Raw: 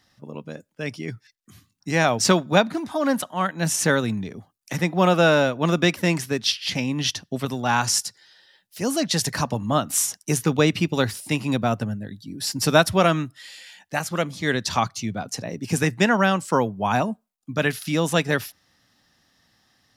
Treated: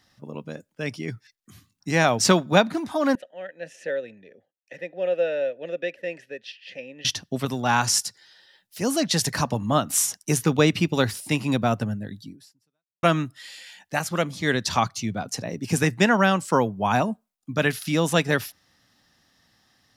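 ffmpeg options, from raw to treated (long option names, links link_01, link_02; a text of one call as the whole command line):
ffmpeg -i in.wav -filter_complex "[0:a]asettb=1/sr,asplit=3[link_01][link_02][link_03];[link_01]atrim=end=3.154[link_04];[link_02]atrim=start=3.15:end=7.05,asetpts=PTS-STARTPTS,afade=type=in:duration=0.004:curve=qsin,afade=type=out:start_time=3.896:duration=0.004:curve=qsin,asplit=3[link_05][link_06][link_07];[link_05]bandpass=frequency=530:width_type=q:width=8,volume=0dB[link_08];[link_06]bandpass=frequency=1840:width_type=q:width=8,volume=-6dB[link_09];[link_07]bandpass=frequency=2480:width_type=q:width=8,volume=-9dB[link_10];[link_08][link_09][link_10]amix=inputs=3:normalize=0[link_11];[link_03]atrim=start=7.046[link_12];[link_04][link_11]acrossfade=duration=0.004:curve1=hsin:curve2=qsin[link_13];[link_13][link_12]acrossfade=duration=0.004:curve1=qsin:curve2=hsin,asplit=2[link_14][link_15];[link_14]atrim=end=13.03,asetpts=PTS-STARTPTS,afade=type=out:start_time=12.26:duration=0.77:curve=exp[link_16];[link_15]atrim=start=13.03,asetpts=PTS-STARTPTS,afade=type=in:duration=0.004:curve=hsin[link_17];[link_16][link_17]concat=n=2:v=0:a=1" out.wav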